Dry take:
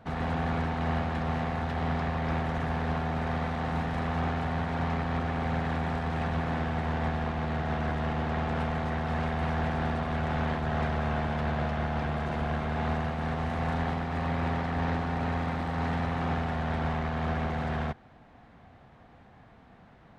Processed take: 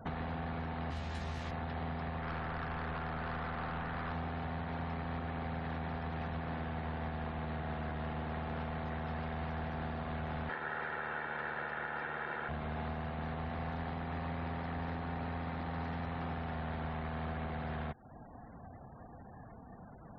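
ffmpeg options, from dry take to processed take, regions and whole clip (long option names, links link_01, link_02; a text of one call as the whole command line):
ffmpeg -i in.wav -filter_complex "[0:a]asettb=1/sr,asplit=3[link_01][link_02][link_03];[link_01]atrim=end=0.904[link_04];[link_02]atrim=start=0.9:end=1.51,asetpts=PTS-STARTPTS,afade=type=in:duration=0.004:curve=qsin,afade=type=out:start_time=0.606:duration=0.004:curve=qsin,aemphasis=mode=production:type=75kf,acrossover=split=260|3000[link_05][link_06][link_07];[link_06]acompressor=threshold=-37dB:ratio=2:attack=3.2:release=140:knee=2.83:detection=peak[link_08];[link_05][link_08][link_07]amix=inputs=3:normalize=0,asplit=2[link_09][link_10];[link_10]adelay=15,volume=-3.5dB[link_11];[link_09][link_11]amix=inputs=2:normalize=0,atrim=end_sample=26901[link_12];[link_03]atrim=start=1.506[link_13];[link_04][link_12]acrossfade=duration=0.004:curve1=hsin:curve2=qsin[link_14];[link_14][link_13]acrossfade=duration=0.004:curve1=qsin:curve2=hsin,asettb=1/sr,asplit=3[link_15][link_16][link_17];[link_15]atrim=end=2.204[link_18];[link_16]atrim=start=2.2:end=4.12,asetpts=PTS-STARTPTS,afade=type=in:duration=0.004:curve=qsin,afade=type=out:start_time=1.916:duration=0.004:curve=qsin,acrossover=split=2500[link_19][link_20];[link_20]acompressor=threshold=-57dB:ratio=4:attack=1:release=60[link_21];[link_19][link_21]amix=inputs=2:normalize=0,equalizer=frequency=1400:width_type=o:width=1.1:gain=9,aeval=exprs='(tanh(25.1*val(0)+0.25)-tanh(0.25))/25.1':channel_layout=same[link_22];[link_17]atrim=start=4.116[link_23];[link_18][link_22]acrossfade=duration=0.004:curve1=hsin:curve2=qsin[link_24];[link_24][link_23]acrossfade=duration=0.004:curve1=qsin:curve2=hsin,asettb=1/sr,asplit=3[link_25][link_26][link_27];[link_25]atrim=end=10.494[link_28];[link_26]atrim=start=10.49:end=12.49,asetpts=PTS-STARTPTS,afade=type=in:duration=0.004:curve=qsin,afade=type=out:start_time=1.996:duration=0.004:curve=qsin,highpass=240,lowpass=4500,equalizer=frequency=1600:width=2.1:gain=12.5,aecho=1:1:2.2:0.46,atrim=end_sample=88200[link_29];[link_27]atrim=start=12.486[link_30];[link_28][link_29]acrossfade=duration=0.004:curve1=hsin:curve2=qsin[link_31];[link_31][link_30]acrossfade=duration=0.004:curve1=qsin:curve2=hsin,afftfilt=real='re*gte(hypot(re,im),0.00251)':imag='im*gte(hypot(re,im),0.00251)':win_size=1024:overlap=0.75,acompressor=threshold=-41dB:ratio=6,volume=3.5dB" out.wav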